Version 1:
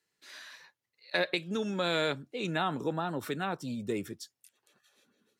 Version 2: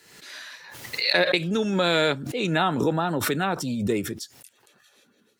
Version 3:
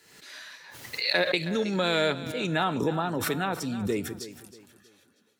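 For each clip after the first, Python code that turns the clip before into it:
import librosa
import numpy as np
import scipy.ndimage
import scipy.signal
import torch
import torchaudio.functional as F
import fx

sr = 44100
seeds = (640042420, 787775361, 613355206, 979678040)

y1 = fx.notch(x, sr, hz=1100.0, q=24.0)
y1 = fx.pre_swell(y1, sr, db_per_s=53.0)
y1 = y1 * 10.0 ** (8.0 / 20.0)
y2 = fx.comb_fb(y1, sr, f0_hz=89.0, decay_s=0.37, harmonics='odd', damping=0.0, mix_pct=40)
y2 = fx.echo_feedback(y2, sr, ms=319, feedback_pct=34, wet_db=-14.5)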